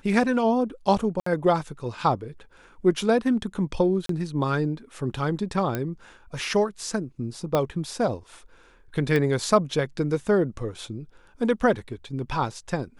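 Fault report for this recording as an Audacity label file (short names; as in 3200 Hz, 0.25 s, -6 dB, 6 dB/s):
1.200000	1.260000	gap 64 ms
4.060000	4.090000	gap 33 ms
5.750000	5.750000	pop -13 dBFS
7.550000	7.550000	pop -10 dBFS
9.160000	9.160000	pop -13 dBFS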